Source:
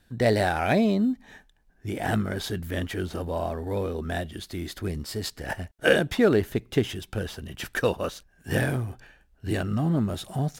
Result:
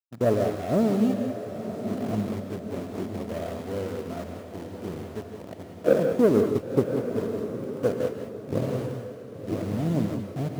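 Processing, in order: steep low-pass 710 Hz 96 dB/oct; power-law curve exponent 1.4; expander -50 dBFS; in parallel at -7 dB: requantised 6-bit, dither none; on the sum: HPF 110 Hz; diffused feedback echo 0.979 s, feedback 47%, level -9 dB; non-linear reverb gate 0.22 s rising, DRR 5 dB

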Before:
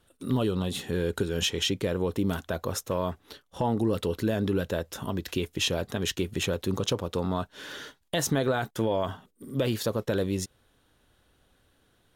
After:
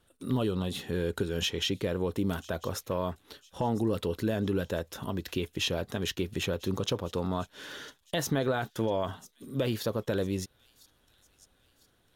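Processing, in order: thin delay 1.001 s, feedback 45%, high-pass 4000 Hz, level -19 dB; dynamic EQ 8100 Hz, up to -6 dB, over -49 dBFS, Q 1.7; gain -2.5 dB

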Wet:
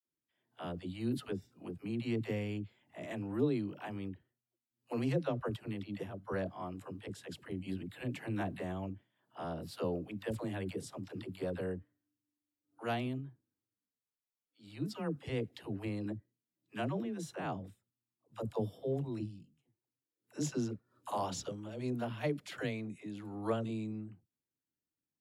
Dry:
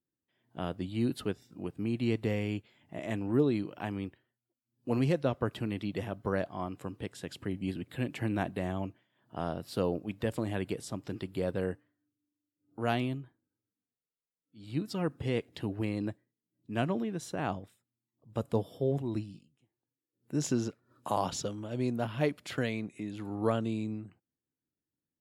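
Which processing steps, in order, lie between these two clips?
dispersion lows, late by 77 ms, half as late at 380 Hz; 5.56–6.32 upward expander 1.5:1, over -42 dBFS; gain -5 dB

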